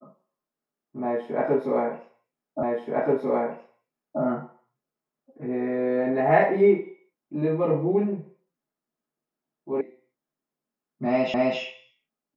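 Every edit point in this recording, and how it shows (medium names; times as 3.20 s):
2.63 s: repeat of the last 1.58 s
9.81 s: sound stops dead
11.34 s: repeat of the last 0.26 s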